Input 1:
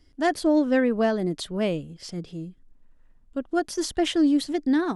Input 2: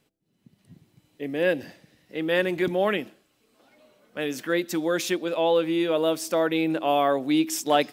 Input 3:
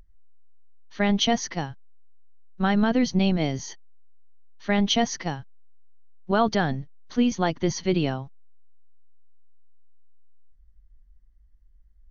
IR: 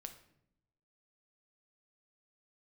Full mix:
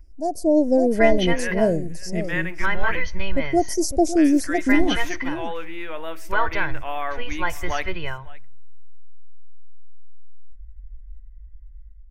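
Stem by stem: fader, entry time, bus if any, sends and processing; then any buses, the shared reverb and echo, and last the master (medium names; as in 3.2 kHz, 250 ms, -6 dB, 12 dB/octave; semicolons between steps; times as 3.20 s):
+2.5 dB, 0.00 s, send -22 dB, echo send -11 dB, elliptic band-stop 640–5500 Hz
-18.5 dB, 0.00 s, send -4 dB, echo send -18 dB, wow and flutter 25 cents
-15.0 dB, 0.00 s, send -6.5 dB, no echo send, resonant low shelf 110 Hz +13.5 dB, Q 1.5; comb 2 ms, depth 81%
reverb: on, RT60 0.75 s, pre-delay 7 ms
echo: delay 556 ms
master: ten-band graphic EQ 125 Hz -5 dB, 250 Hz -7 dB, 500 Hz -6 dB, 1 kHz +4 dB, 2 kHz +11 dB, 4 kHz -8 dB, 8 kHz -5 dB; level rider gain up to 9.5 dB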